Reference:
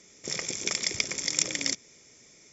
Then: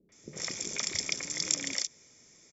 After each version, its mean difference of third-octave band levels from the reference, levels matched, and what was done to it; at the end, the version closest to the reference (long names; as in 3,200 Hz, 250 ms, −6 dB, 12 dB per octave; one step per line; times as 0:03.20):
3.5 dB: mains-hum notches 60/120 Hz
three-band delay without the direct sound lows, mids, highs 90/120 ms, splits 440/2,700 Hz
level −2.5 dB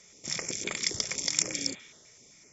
2.0 dB: healed spectral selection 0:01.56–0:02.11, 560–4,200 Hz both
notch on a step sequencer 7.8 Hz 290–5,600 Hz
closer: second